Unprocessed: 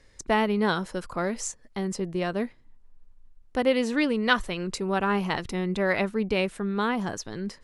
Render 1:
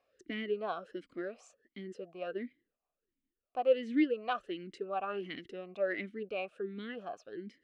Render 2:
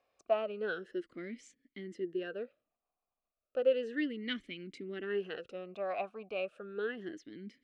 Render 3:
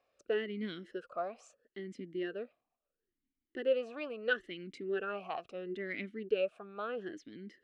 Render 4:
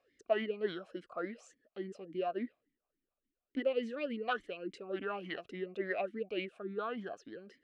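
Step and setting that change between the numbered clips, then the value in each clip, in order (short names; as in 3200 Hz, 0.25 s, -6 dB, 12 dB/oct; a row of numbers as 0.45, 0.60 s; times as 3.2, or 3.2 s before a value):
vowel sweep, rate: 1.4, 0.33, 0.75, 3.5 Hz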